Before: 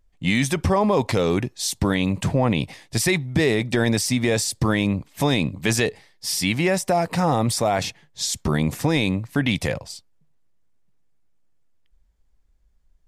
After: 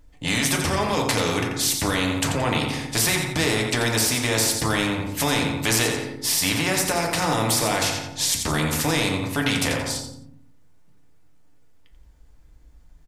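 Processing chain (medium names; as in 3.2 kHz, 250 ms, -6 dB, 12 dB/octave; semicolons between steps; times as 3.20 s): feedback delay 87 ms, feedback 29%, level -11 dB; FDN reverb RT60 0.63 s, low-frequency decay 1.45×, high-frequency decay 0.35×, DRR 1 dB; spectrum-flattening compressor 2:1; trim -3.5 dB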